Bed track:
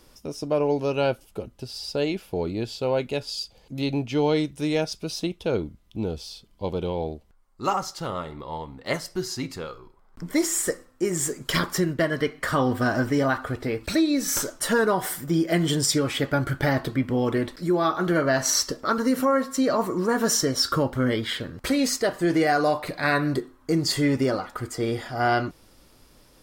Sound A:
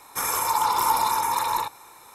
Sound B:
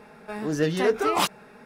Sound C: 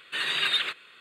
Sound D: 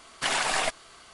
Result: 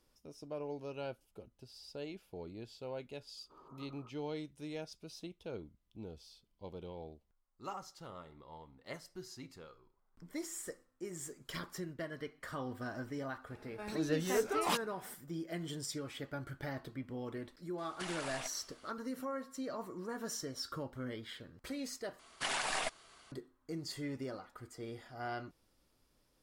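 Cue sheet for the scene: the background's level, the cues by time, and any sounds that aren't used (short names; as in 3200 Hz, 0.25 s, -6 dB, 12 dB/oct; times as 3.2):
bed track -19 dB
3.37 add C -15 dB + rippled Chebyshev low-pass 1300 Hz, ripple 6 dB
13.5 add B -10.5 dB
17.78 add D -11.5 dB + compressor, threshold -28 dBFS
22.19 replace with D -9.5 dB
not used: A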